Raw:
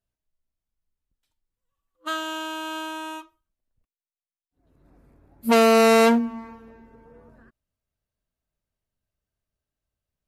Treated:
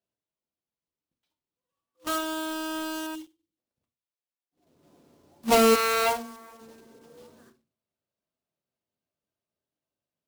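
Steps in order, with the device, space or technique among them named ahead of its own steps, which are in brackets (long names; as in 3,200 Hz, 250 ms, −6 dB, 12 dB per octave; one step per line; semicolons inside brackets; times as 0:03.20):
rectangular room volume 120 cubic metres, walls furnished, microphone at 0.8 metres
0:03.15–0:03.57: time-frequency box erased 560–2,700 Hz
0:05.74–0:06.60: high-pass filter 960 Hz → 450 Hz 12 dB per octave
early digital voice recorder (band-pass filter 210–3,900 Hz; one scale factor per block 3 bits)
parametric band 1,700 Hz −6 dB 1.2 octaves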